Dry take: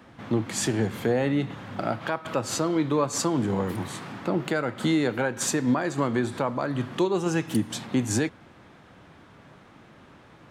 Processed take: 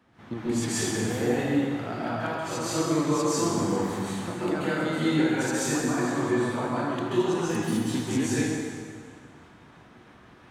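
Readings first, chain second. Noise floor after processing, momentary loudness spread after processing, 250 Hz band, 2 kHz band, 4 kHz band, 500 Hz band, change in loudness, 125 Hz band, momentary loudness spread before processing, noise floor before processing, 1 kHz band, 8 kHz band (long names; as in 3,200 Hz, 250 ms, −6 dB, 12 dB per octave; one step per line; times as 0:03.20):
−52 dBFS, 7 LU, +0.5 dB, +0.5 dB, 0.0 dB, −0.5 dB, 0.0 dB, −1.5 dB, 6 LU, −52 dBFS, 0.0 dB, 0.0 dB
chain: parametric band 560 Hz −4 dB 0.27 octaves
shaped tremolo saw up 3 Hz, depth 50%
dense smooth reverb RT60 1.9 s, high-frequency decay 0.9×, pre-delay 120 ms, DRR −9.5 dB
level −7.5 dB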